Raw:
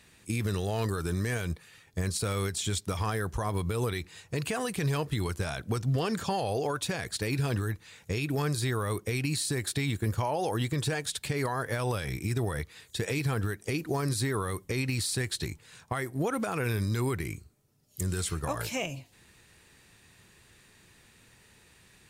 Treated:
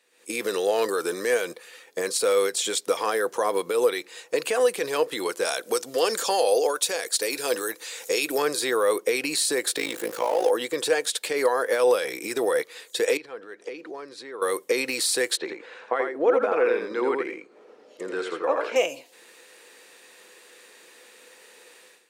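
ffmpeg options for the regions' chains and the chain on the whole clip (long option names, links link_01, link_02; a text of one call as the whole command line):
ffmpeg -i in.wav -filter_complex "[0:a]asettb=1/sr,asplit=3[link_01][link_02][link_03];[link_01]atrim=end=5.454[link_04];[link_02]atrim=start=5.45:end=8.38,asetpts=PTS-STARTPTS,afade=type=in:duration=0.004:curve=qsin,afade=type=out:start_time=2.926:duration=0.004:curve=qsin,bass=frequency=250:gain=-5,treble=frequency=4000:gain=9,acompressor=mode=upward:threshold=-37dB:ratio=2.5:attack=3.2:release=140:knee=2.83:detection=peak[link_05];[link_03]atrim=start=8.376[link_06];[link_04][link_05]acrossfade=duration=0.004:curve1=hsin:curve2=qsin[link_07];[link_07][link_06]acrossfade=duration=0.004:curve1=qsin:curve2=hsin,asettb=1/sr,asplit=3[link_08][link_09][link_10];[link_08]atrim=end=9.764[link_11];[link_09]atrim=start=9.76:end=10.5,asetpts=PTS-STARTPTS,afade=type=in:duration=0.004:curve=qsin,afade=type=out:start_time=0.736:duration=0.004:curve=qsin,aeval=exprs='val(0)+0.5*0.0178*sgn(val(0))':channel_layout=same,tremolo=f=54:d=0.857[link_12];[link_10]atrim=start=10.496[link_13];[link_11][link_12]acrossfade=duration=0.004:curve1=hsin:curve2=qsin[link_14];[link_14][link_13]acrossfade=duration=0.004:curve1=qsin:curve2=hsin,asettb=1/sr,asplit=3[link_15][link_16][link_17];[link_15]atrim=end=13.174[link_18];[link_16]atrim=start=13.17:end=14.42,asetpts=PTS-STARTPTS,afade=type=in:duration=0.004:curve=qsin,afade=type=out:start_time=1.246:duration=0.004:curve=qsin,lowpass=3800,acompressor=threshold=-42dB:ratio=6:attack=3.2:release=140:knee=1:detection=peak[link_19];[link_17]atrim=start=14.416[link_20];[link_18][link_19]acrossfade=duration=0.004:curve1=hsin:curve2=qsin[link_21];[link_21][link_20]acrossfade=duration=0.004:curve1=qsin:curve2=hsin,asettb=1/sr,asplit=3[link_22][link_23][link_24];[link_22]atrim=end=15.374[link_25];[link_23]atrim=start=15.37:end=18.76,asetpts=PTS-STARTPTS,afade=type=in:duration=0.004:curve=qsin,afade=type=out:start_time=3.386:duration=0.004:curve=qsin,acompressor=mode=upward:threshold=-40dB:ratio=2.5:attack=3.2:release=140:knee=2.83:detection=peak,highpass=190,lowpass=2100,aecho=1:1:84:0.562,atrim=end_sample=149499[link_26];[link_24]atrim=start=18.756[link_27];[link_25][link_26]acrossfade=duration=0.004:curve1=hsin:curve2=qsin[link_28];[link_28][link_27]acrossfade=duration=0.004:curve1=qsin:curve2=hsin,highpass=frequency=330:width=0.5412,highpass=frequency=330:width=1.3066,equalizer=frequency=500:width=7:gain=12.5,dynaudnorm=framelen=100:gausssize=5:maxgain=16.5dB,volume=-8dB" out.wav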